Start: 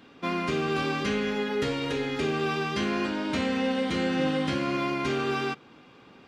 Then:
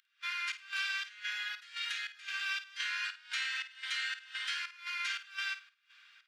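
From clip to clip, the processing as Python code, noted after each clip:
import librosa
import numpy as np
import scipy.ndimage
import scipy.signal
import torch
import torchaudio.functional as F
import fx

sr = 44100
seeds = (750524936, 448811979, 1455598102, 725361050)

y = scipy.signal.sosfilt(scipy.signal.cheby1(4, 1.0, 1500.0, 'highpass', fs=sr, output='sos'), x)
y = fx.volume_shaper(y, sr, bpm=116, per_beat=1, depth_db=-23, release_ms=208.0, shape='slow start')
y = fx.room_flutter(y, sr, wall_m=8.9, rt60_s=0.26)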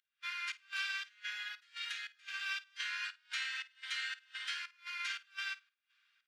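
y = fx.upward_expand(x, sr, threshold_db=-57.0, expansion=1.5)
y = y * 10.0 ** (-2.0 / 20.0)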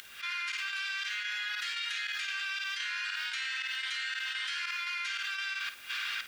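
y = fx.env_flatten(x, sr, amount_pct=100)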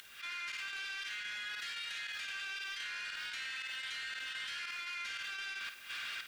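y = 10.0 ** (-30.5 / 20.0) * np.tanh(x / 10.0 ** (-30.5 / 20.0))
y = y + 10.0 ** (-15.5 / 20.0) * np.pad(y, (int(198 * sr / 1000.0), 0))[:len(y)]
y = y * 10.0 ** (-4.5 / 20.0)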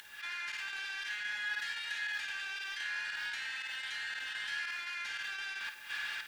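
y = fx.small_body(x, sr, hz=(870.0, 1700.0), ring_ms=55, db=16)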